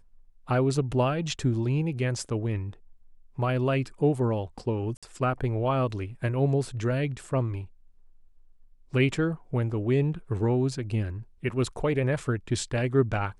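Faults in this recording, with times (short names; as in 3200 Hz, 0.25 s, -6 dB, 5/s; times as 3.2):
4.97–5.03 gap 56 ms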